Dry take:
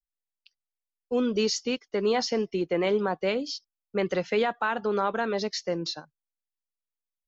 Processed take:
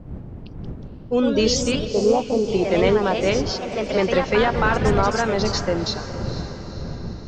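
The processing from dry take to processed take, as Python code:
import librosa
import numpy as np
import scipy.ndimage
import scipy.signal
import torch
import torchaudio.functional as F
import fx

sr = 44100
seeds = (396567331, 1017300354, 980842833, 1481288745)

y = fx.dmg_wind(x, sr, seeds[0], corner_hz=170.0, level_db=-37.0)
y = fx.cheby2_lowpass(y, sr, hz=3000.0, order=4, stop_db=60, at=(1.81, 2.48))
y = fx.echo_diffused(y, sr, ms=479, feedback_pct=55, wet_db=-11.5)
y = fx.echo_pitch(y, sr, ms=230, semitones=2, count=2, db_per_echo=-6.0)
y = F.gain(torch.from_numpy(y), 6.0).numpy()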